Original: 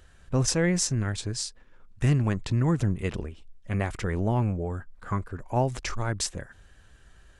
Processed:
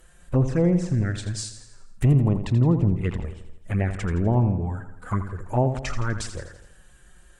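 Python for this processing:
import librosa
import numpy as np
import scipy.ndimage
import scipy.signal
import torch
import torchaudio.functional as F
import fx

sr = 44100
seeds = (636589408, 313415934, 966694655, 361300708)

y = fx.env_lowpass_down(x, sr, base_hz=1400.0, full_db=-20.5)
y = fx.high_shelf_res(y, sr, hz=6800.0, db=8.0, q=1.5)
y = fx.env_flanger(y, sr, rest_ms=6.3, full_db=-21.0)
y = fx.echo_feedback(y, sr, ms=83, feedback_pct=53, wet_db=-10.5)
y = y * librosa.db_to_amplitude(4.5)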